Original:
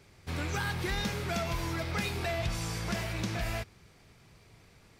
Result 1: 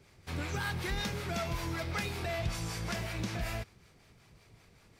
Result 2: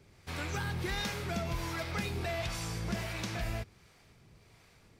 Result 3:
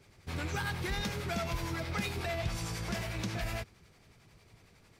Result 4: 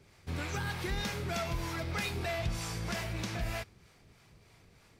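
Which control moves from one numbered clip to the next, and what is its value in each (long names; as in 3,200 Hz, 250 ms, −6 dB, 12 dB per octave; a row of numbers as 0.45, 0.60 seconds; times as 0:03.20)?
two-band tremolo in antiphase, speed: 5.3, 1.4, 11, 3.2 Hertz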